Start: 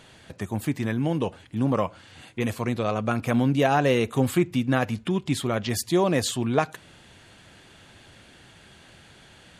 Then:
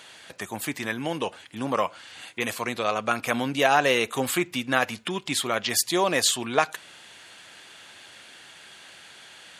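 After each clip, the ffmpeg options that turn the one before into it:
-af "highpass=f=1.2k:p=1,volume=7dB"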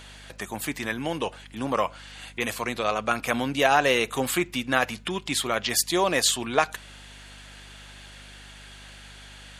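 -af "aeval=exprs='val(0)+0.00398*(sin(2*PI*50*n/s)+sin(2*PI*2*50*n/s)/2+sin(2*PI*3*50*n/s)/3+sin(2*PI*4*50*n/s)/4+sin(2*PI*5*50*n/s)/5)':c=same"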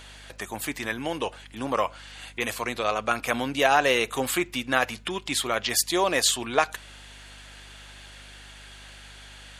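-af "equalizer=f=170:w=1.5:g=-5.5"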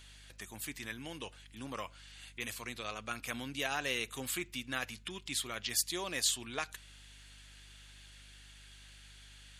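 -af "equalizer=f=690:w=0.53:g=-12,volume=-7.5dB"

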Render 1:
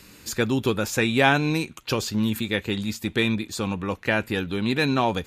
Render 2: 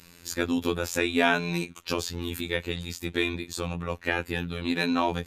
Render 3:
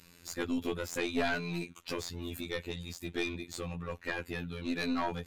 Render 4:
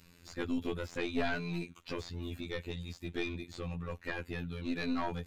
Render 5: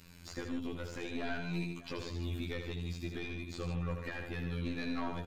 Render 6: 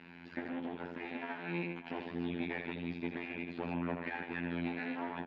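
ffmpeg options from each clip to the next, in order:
-af "afftfilt=real='hypot(re,im)*cos(PI*b)':imag='0':win_size=2048:overlap=0.75"
-af "aeval=exprs='(tanh(7.94*val(0)+0.55)-tanh(0.55))/7.94':c=same,volume=-3dB"
-filter_complex "[0:a]acrossover=split=5400[a][b];[b]acompressor=threshold=-58dB:ratio=4:attack=1:release=60[c];[a][c]amix=inputs=2:normalize=0,lowshelf=f=160:g=6.5,volume=-3dB"
-filter_complex "[0:a]alimiter=level_in=8.5dB:limit=-24dB:level=0:latency=1:release=444,volume=-8.5dB,asplit=2[a][b];[b]aecho=0:1:80|150|595:0.473|0.355|0.126[c];[a][c]amix=inputs=2:normalize=0,volume=3dB"
-af "aeval=exprs='max(val(0),0)':c=same,highpass=230,equalizer=f=230:t=q:w=4:g=7,equalizer=f=530:t=q:w=4:g=-5,equalizer=f=860:t=q:w=4:g=5,equalizer=f=1.2k:t=q:w=4:g=-7,equalizer=f=1.7k:t=q:w=4:g=3,lowpass=f=2.7k:w=0.5412,lowpass=f=2.7k:w=1.3066,volume=8dB"

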